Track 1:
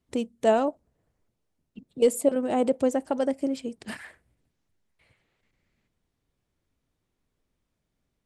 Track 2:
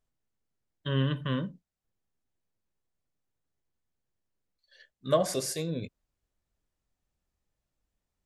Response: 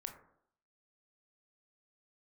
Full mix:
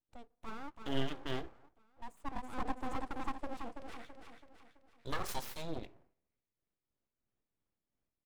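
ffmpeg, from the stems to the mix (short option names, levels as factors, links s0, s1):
-filter_complex "[0:a]highshelf=f=4800:g=-12,volume=0.335,afade=t=in:st=1.98:d=0.36:silence=0.398107,asplit=3[s0][s1][s2];[s1]volume=0.112[s3];[s2]volume=0.501[s4];[1:a]aeval=exprs='sgn(val(0))*max(abs(val(0))-0.00596,0)':c=same,aphaser=in_gain=1:out_gain=1:delay=2.4:decay=0.36:speed=1.2:type=sinusoidal,volume=0.473,asplit=3[s5][s6][s7];[s6]volume=0.562[s8];[s7]apad=whole_len=363876[s9];[s0][s9]sidechaincompress=threshold=0.00447:ratio=8:attack=16:release=1320[s10];[2:a]atrim=start_sample=2205[s11];[s3][s8]amix=inputs=2:normalize=0[s12];[s12][s11]afir=irnorm=-1:irlink=0[s13];[s4]aecho=0:1:331|662|993|1324|1655|1986:1|0.46|0.212|0.0973|0.0448|0.0206[s14];[s10][s5][s13][s14]amix=inputs=4:normalize=0,aeval=exprs='abs(val(0))':c=same,tremolo=f=3:d=0.44"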